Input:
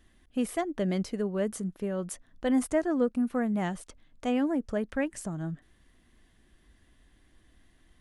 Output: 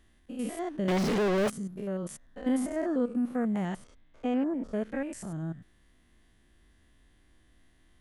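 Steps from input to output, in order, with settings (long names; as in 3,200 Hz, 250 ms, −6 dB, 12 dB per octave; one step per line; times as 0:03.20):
spectrum averaged block by block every 100 ms
0:00.88–0:01.50: mid-hump overdrive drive 44 dB, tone 2,000 Hz, clips at −20 dBFS
0:03.75–0:04.63: low-pass filter 3,700 Hz → 2,000 Hz 6 dB per octave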